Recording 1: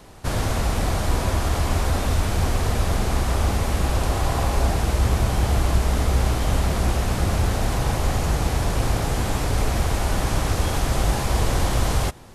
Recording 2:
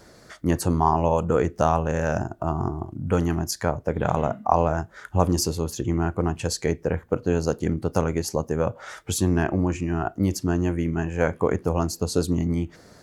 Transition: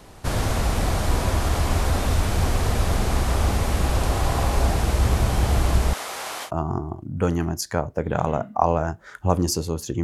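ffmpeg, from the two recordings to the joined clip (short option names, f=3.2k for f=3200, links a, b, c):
-filter_complex "[0:a]asettb=1/sr,asplit=3[a][b][c];[a]atrim=end=5.934[d];[b]atrim=start=5.93:end=6.51,asetpts=PTS-STARTPTS,afade=t=in:d=0.004:c=qsin,afade=t=out:st=0.576:d=0.004:c=qsin,highpass=780[e];[c]atrim=start=6.506[f];[d][e]acrossfade=d=0.004:c1=hsin:c2=qsin[g];[g][f]acrossfade=d=0.004:c1=qsin:c2=hsin,apad=whole_dur=10.03,atrim=end=10.03,atrim=end=6.51,asetpts=PTS-STARTPTS[h];[1:a]atrim=start=2.33:end=5.93,asetpts=PTS-STARTPTS[i];[h][i]acrossfade=d=0.08:c1=tri:c2=tri"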